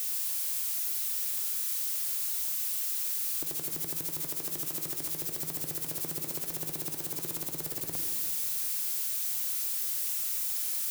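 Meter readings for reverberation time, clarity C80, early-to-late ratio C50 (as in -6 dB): 2.0 s, 6.0 dB, 5.0 dB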